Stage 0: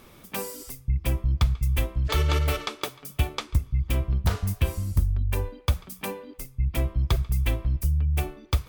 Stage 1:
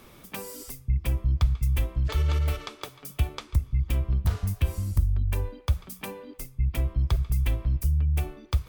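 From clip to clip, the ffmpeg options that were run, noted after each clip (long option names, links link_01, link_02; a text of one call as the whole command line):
ffmpeg -i in.wav -filter_complex "[0:a]acrossover=split=130[link_01][link_02];[link_02]acompressor=threshold=-33dB:ratio=10[link_03];[link_01][link_03]amix=inputs=2:normalize=0" out.wav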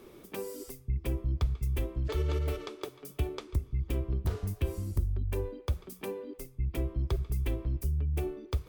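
ffmpeg -i in.wav -af "equalizer=frequency=380:width_type=o:width=0.9:gain=14.5,volume=-7dB" out.wav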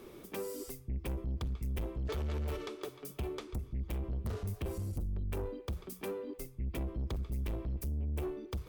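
ffmpeg -i in.wav -af "asoftclip=type=tanh:threshold=-33.5dB,volume=1dB" out.wav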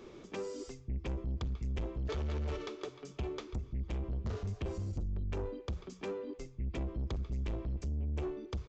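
ffmpeg -i in.wav -af "aresample=16000,aresample=44100" out.wav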